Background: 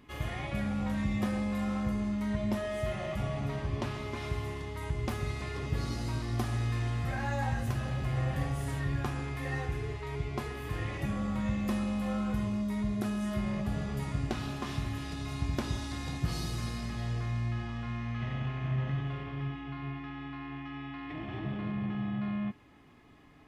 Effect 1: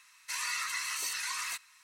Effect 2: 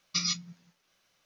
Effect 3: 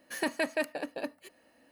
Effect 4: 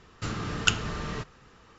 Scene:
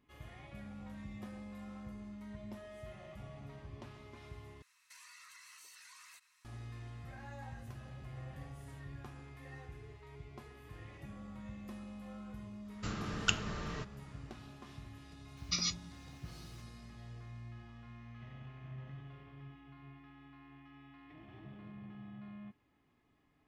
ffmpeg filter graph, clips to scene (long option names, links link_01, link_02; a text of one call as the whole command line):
ffmpeg -i bed.wav -i cue0.wav -i cue1.wav -i cue2.wav -i cue3.wav -filter_complex "[0:a]volume=-16dB[link_01];[1:a]acompressor=threshold=-43dB:ratio=6:attack=3.2:release=140:knee=1:detection=peak[link_02];[2:a]acompressor=mode=upward:threshold=-46dB:ratio=2.5:attack=3.2:release=140:knee=2.83:detection=peak[link_03];[link_01]asplit=2[link_04][link_05];[link_04]atrim=end=4.624[link_06];[link_02]atrim=end=1.83,asetpts=PTS-STARTPTS,volume=-11dB[link_07];[link_05]atrim=start=6.446[link_08];[4:a]atrim=end=1.78,asetpts=PTS-STARTPTS,volume=-7.5dB,afade=type=in:duration=0.1,afade=type=out:start_time=1.68:duration=0.1,adelay=12610[link_09];[link_03]atrim=end=1.25,asetpts=PTS-STARTPTS,volume=-5dB,afade=type=in:duration=0.004:curve=hsin,afade=type=out:start_time=1.246:duration=0.004:curve=hsin,adelay=15370[link_10];[link_06][link_07]acrossfade=duration=0.004:curve1=hsin:curve2=hsin[link_11];[link_11][link_08]acrossfade=duration=0.004:curve1=hsin:curve2=hsin[link_12];[link_12][link_09][link_10]amix=inputs=3:normalize=0" out.wav